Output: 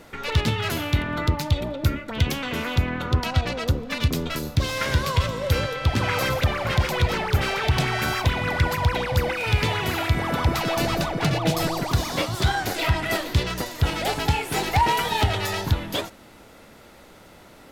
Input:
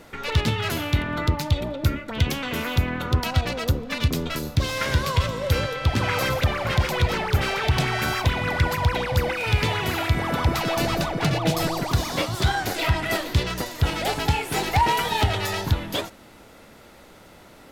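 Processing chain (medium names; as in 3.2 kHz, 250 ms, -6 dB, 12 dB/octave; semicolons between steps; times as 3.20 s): 2.52–3.78 s: treble shelf 12 kHz -12 dB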